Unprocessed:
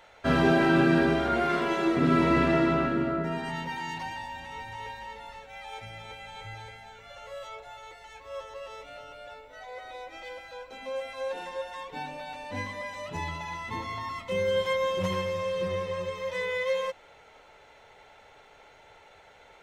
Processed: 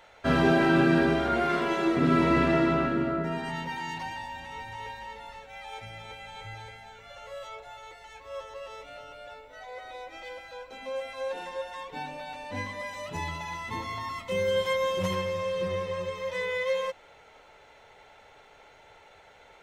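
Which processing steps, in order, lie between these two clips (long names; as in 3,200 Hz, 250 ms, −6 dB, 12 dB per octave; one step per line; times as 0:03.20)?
0:12.79–0:15.15: high-shelf EQ 6,800 Hz +6 dB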